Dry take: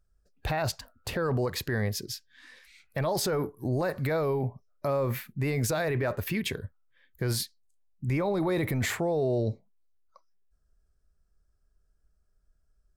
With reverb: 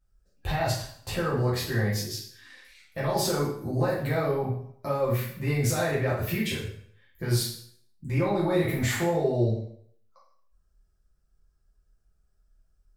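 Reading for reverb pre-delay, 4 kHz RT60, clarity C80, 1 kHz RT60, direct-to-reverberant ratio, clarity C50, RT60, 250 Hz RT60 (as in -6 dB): 4 ms, 0.55 s, 8.0 dB, 0.60 s, -8.0 dB, 3.5 dB, 0.60 s, 0.55 s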